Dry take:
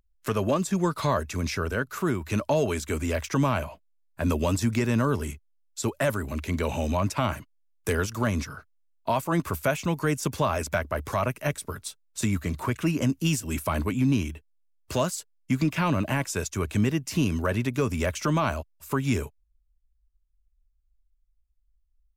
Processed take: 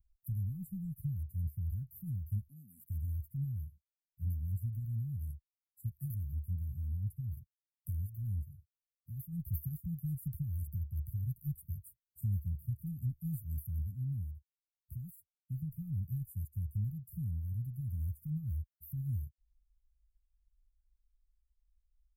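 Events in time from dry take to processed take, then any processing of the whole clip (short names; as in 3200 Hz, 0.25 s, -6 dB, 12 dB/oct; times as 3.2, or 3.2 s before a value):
2.48–2.9 HPF 220 Hz 24 dB/oct
whole clip: inverse Chebyshev band-stop 370–6400 Hz, stop band 50 dB; passive tone stack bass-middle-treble 6-0-2; vocal rider within 3 dB 0.5 s; gain +9.5 dB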